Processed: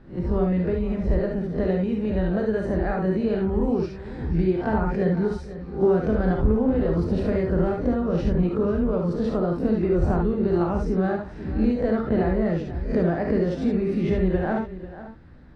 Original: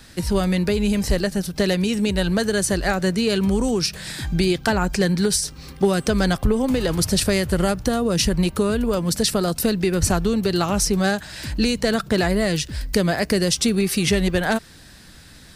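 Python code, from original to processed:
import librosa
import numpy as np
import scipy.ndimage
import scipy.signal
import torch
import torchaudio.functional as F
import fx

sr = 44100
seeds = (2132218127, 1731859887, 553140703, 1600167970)

y = fx.spec_swells(x, sr, rise_s=0.33)
y = scipy.signal.sosfilt(scipy.signal.butter(2, 1100.0, 'lowpass', fs=sr, output='sos'), y)
y = fx.low_shelf(y, sr, hz=400.0, db=3.5)
y = y + 10.0 ** (-14.5 / 20.0) * np.pad(y, (int(493 * sr / 1000.0), 0))[:len(y)]
y = fx.rev_gated(y, sr, seeds[0], gate_ms=90, shape='rising', drr_db=1.0)
y = F.gain(torch.from_numpy(y), -6.5).numpy()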